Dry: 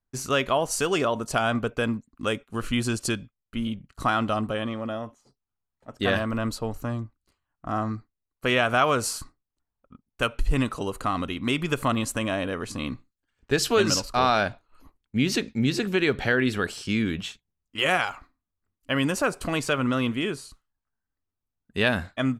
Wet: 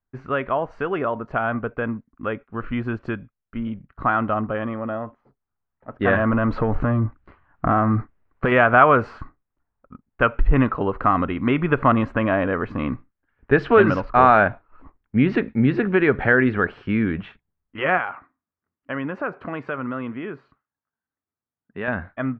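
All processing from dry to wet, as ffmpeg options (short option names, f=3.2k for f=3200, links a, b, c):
-filter_complex "[0:a]asettb=1/sr,asplit=3[a][b][c];[a]atrim=end=6.154[d];[b]atrim=start=6.15:end=8.52,asetpts=PTS-STARTPTS,afade=t=in:d=0.004:c=qsin,afade=t=out:st=2.366:d=0.004:c=qsin,acompressor=threshold=-34dB:ratio=16:attack=3.2:release=140:knee=1:detection=peak,aeval=exprs='0.119*sin(PI/2*3.55*val(0)/0.119)':c=same[e];[c]atrim=start=8.516[f];[d][e]acrossfade=d=0.004:c1=hsin:c2=qsin[g];[g][f]acrossfade=d=0.004:c1=qsin:c2=hsin,asettb=1/sr,asplit=3[h][i][j];[h]atrim=end=17.984[k];[i]atrim=start=17.98:end=21.88,asetpts=PTS-STARTPTS,afade=t=in:d=0.004:c=qsin,afade=t=out:st=3.896:d=0.004:c=qsin,acompressor=threshold=-30dB:ratio=1.5:attack=3.2:release=140:knee=1:detection=peak,highpass=130[l];[j]atrim=start=21.876[m];[k][l]acrossfade=d=0.004:c1=hsin:c2=qsin[n];[n][m]acrossfade=d=0.004:c1=qsin:c2=hsin,lowpass=f=1.8k:w=0.5412,lowpass=f=1.8k:w=1.3066,tiltshelf=f=1.4k:g=-3,dynaudnorm=f=350:g=31:m=8dB,volume=2.5dB"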